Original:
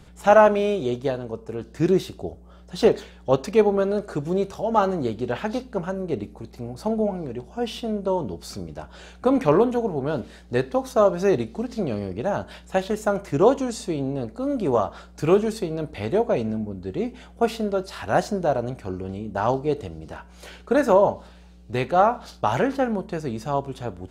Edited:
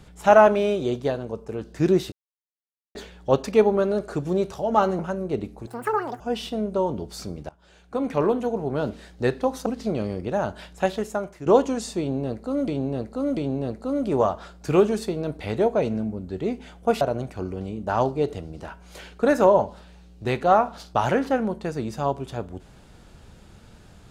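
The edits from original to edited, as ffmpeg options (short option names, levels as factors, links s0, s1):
-filter_complex "[0:a]asplit=12[s0][s1][s2][s3][s4][s5][s6][s7][s8][s9][s10][s11];[s0]atrim=end=2.12,asetpts=PTS-STARTPTS,afade=t=out:st=2.116:d=0.004:c=hsin[s12];[s1]atrim=start=2.12:end=2.95,asetpts=PTS-STARTPTS,volume=0[s13];[s2]atrim=start=2.95:end=4.992,asetpts=PTS-STARTPTS,afade=t=in:d=0.004:c=hsin[s14];[s3]atrim=start=5.778:end=6.464[s15];[s4]atrim=start=6.46:end=7.51,asetpts=PTS-STARTPTS,asetrate=87318,aresample=44100,atrim=end_sample=23386,asetpts=PTS-STARTPTS[s16];[s5]atrim=start=7.506:end=8.8,asetpts=PTS-STARTPTS,afade=t=out:st=1.29:d=0.004:c=hsin:silence=0.125893[s17];[s6]atrim=start=8.8:end=10.972,asetpts=PTS-STARTPTS,afade=t=in:d=1.32:silence=0.125893[s18];[s7]atrim=start=11.578:end=13.38,asetpts=PTS-STARTPTS,afade=t=out:st=1.182:d=0.62:silence=0.199526[s19];[s8]atrim=start=13.38:end=14.602,asetpts=PTS-STARTPTS,afade=t=in:d=0.004:c=hsin:silence=0.199526[s20];[s9]atrim=start=13.908:end=14.602[s21];[s10]atrim=start=13.908:end=17.552[s22];[s11]atrim=start=18.488[s23];[s12][s13][s14]concat=n=3:v=0:a=1[s24];[s24][s15]acrossfade=d=0.004:c1=hsin:c2=hsin[s25];[s25][s16]acrossfade=d=0.004:c1=hsin:c2=hsin[s26];[s17][s18]concat=n=2:v=0:a=1[s27];[s26][s27]acrossfade=d=0.004:c1=hsin:c2=hsin[s28];[s19][s20]concat=n=2:v=0:a=1[s29];[s28][s29]acrossfade=d=0.004:c1=hsin:c2=hsin[s30];[s30][s21]acrossfade=d=0.004:c1=hsin:c2=hsin[s31];[s31][s22]acrossfade=d=0.004:c1=hsin:c2=hsin[s32];[s32][s23]acrossfade=d=0.004:c1=hsin:c2=hsin"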